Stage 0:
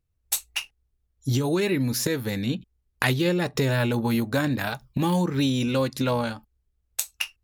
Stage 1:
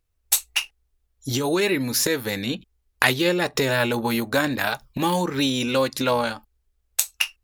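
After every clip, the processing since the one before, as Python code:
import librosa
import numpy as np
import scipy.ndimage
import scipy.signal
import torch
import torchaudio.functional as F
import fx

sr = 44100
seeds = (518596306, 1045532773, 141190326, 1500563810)

y = fx.peak_eq(x, sr, hz=130.0, db=-11.5, octaves=2.2)
y = F.gain(torch.from_numpy(y), 6.0).numpy()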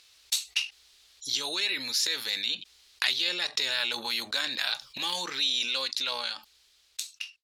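y = fx.fade_out_tail(x, sr, length_s=1.88)
y = fx.bandpass_q(y, sr, hz=4100.0, q=2.1)
y = fx.env_flatten(y, sr, amount_pct=50)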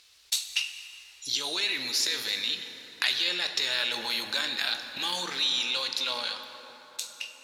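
y = fx.rev_plate(x, sr, seeds[0], rt60_s=4.7, hf_ratio=0.45, predelay_ms=0, drr_db=6.5)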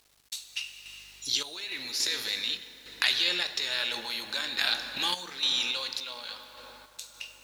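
y = fx.dmg_buzz(x, sr, base_hz=50.0, harmonics=35, level_db=-65.0, tilt_db=-7, odd_only=False)
y = fx.tremolo_random(y, sr, seeds[1], hz=3.5, depth_pct=75)
y = fx.quant_dither(y, sr, seeds[2], bits=10, dither='none')
y = F.gain(torch.from_numpy(y), 2.0).numpy()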